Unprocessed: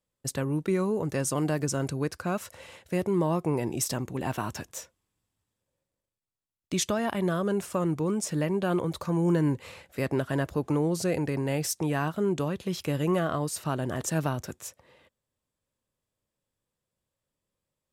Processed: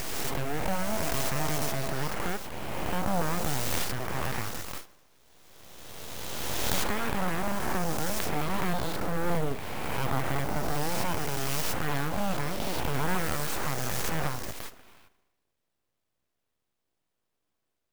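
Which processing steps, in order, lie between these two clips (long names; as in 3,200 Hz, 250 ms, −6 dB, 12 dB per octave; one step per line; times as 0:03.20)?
peak hold with a rise ahead of every peak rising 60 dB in 2.27 s
delay with a low-pass on its return 76 ms, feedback 65%, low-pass 3,500 Hz, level −17 dB
in parallel at −2 dB: downward compressor, threshold −36 dBFS, peak gain reduction 16.5 dB
on the sum: full-wave rectification
0:00.81–0:01.92: steady tone 660 Hz −34 dBFS
converter with an unsteady clock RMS 0.031 ms
level −3.5 dB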